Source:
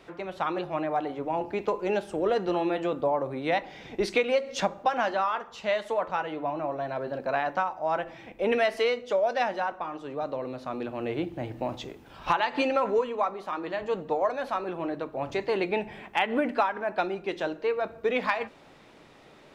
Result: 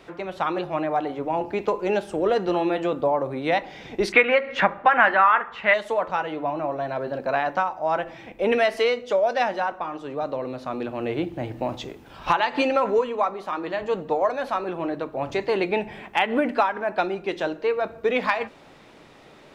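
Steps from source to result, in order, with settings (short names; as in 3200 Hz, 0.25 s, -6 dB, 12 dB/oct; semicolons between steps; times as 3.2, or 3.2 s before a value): 4.12–5.74 EQ curve 610 Hz 0 dB, 1900 Hz +13 dB, 5700 Hz -16 dB; gain +4 dB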